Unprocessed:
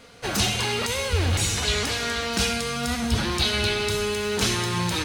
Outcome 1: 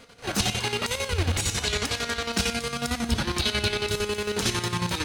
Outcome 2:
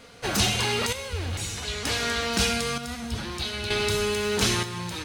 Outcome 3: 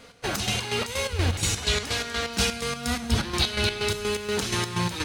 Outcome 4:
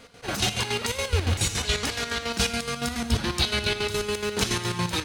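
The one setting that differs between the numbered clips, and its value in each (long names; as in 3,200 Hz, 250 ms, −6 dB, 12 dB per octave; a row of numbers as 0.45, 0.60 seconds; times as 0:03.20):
square-wave tremolo, speed: 11, 0.54, 4.2, 7.1 Hertz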